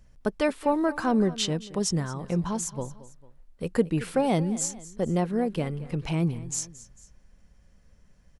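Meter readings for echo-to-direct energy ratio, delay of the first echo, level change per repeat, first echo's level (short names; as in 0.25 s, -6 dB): -16.5 dB, 0.224 s, -6.0 dB, -17.5 dB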